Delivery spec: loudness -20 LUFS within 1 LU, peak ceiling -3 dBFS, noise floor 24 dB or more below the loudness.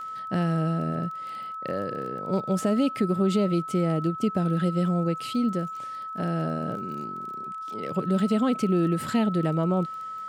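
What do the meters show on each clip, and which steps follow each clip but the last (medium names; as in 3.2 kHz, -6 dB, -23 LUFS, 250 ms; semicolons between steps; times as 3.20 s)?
tick rate 20 per s; steady tone 1.3 kHz; tone level -33 dBFS; loudness -27.0 LUFS; peak level -13.0 dBFS; loudness target -20.0 LUFS
-> de-click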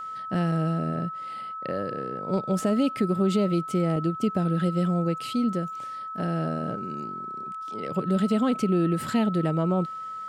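tick rate 0 per s; steady tone 1.3 kHz; tone level -33 dBFS
-> band-stop 1.3 kHz, Q 30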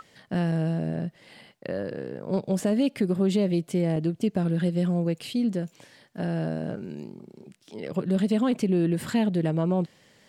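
steady tone not found; loudness -27.0 LUFS; peak level -14.0 dBFS; loudness target -20.0 LUFS
-> trim +7 dB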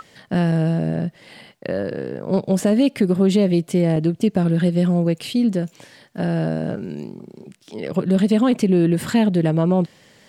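loudness -20.0 LUFS; peak level -7.0 dBFS; noise floor -54 dBFS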